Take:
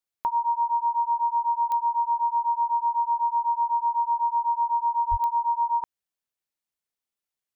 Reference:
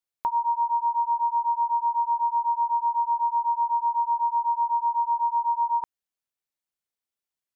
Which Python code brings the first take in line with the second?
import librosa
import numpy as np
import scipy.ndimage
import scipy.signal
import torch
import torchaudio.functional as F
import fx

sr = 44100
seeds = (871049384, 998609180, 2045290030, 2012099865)

y = fx.fix_declick_ar(x, sr, threshold=10.0)
y = fx.fix_deplosive(y, sr, at_s=(5.1,))